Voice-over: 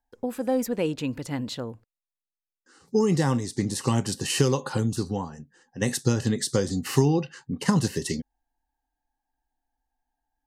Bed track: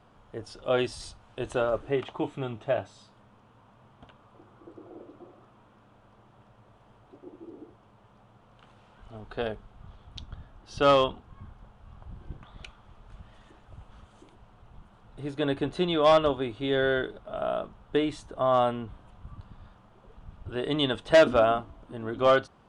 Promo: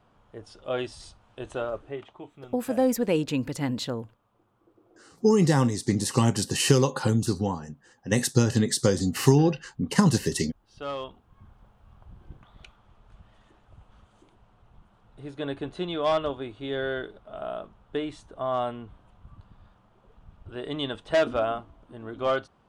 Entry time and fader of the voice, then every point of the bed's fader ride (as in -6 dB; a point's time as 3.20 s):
2.30 s, +2.0 dB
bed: 1.67 s -4 dB
2.28 s -13.5 dB
10.92 s -13.5 dB
11.56 s -4.5 dB